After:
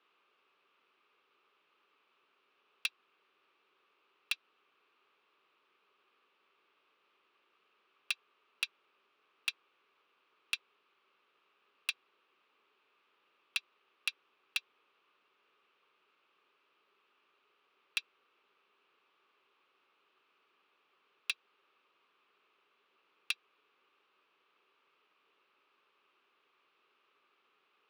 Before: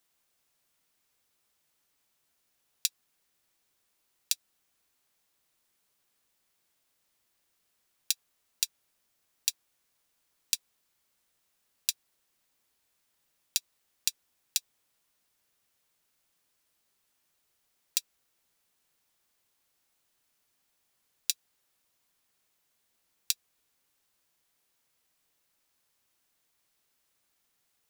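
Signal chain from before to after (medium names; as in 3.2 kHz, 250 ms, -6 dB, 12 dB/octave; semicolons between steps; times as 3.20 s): cabinet simulation 340–3200 Hz, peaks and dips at 400 Hz +10 dB, 690 Hz -6 dB, 1.2 kHz +10 dB, 1.9 kHz -5 dB, 2.6 kHz +6 dB; hard clipper -30 dBFS, distortion -7 dB; trim +7 dB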